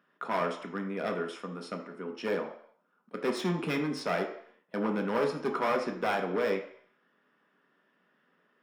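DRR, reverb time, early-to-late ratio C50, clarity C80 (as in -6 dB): 3.0 dB, 0.60 s, 8.0 dB, 11.5 dB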